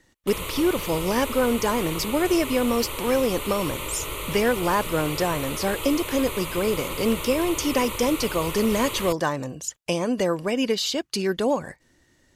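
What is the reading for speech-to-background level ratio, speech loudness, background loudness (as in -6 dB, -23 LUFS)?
6.5 dB, -25.0 LUFS, -31.5 LUFS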